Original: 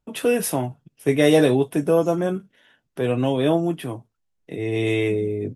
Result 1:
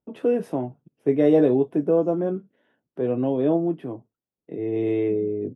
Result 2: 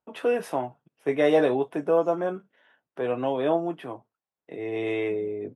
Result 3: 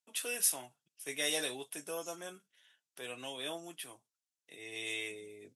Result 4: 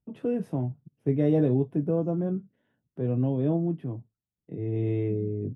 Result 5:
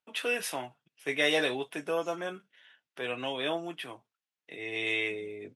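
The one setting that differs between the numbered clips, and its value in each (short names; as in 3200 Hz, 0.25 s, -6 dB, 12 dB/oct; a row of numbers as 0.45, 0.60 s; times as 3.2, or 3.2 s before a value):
band-pass, frequency: 340, 890, 7700, 130, 2600 Hz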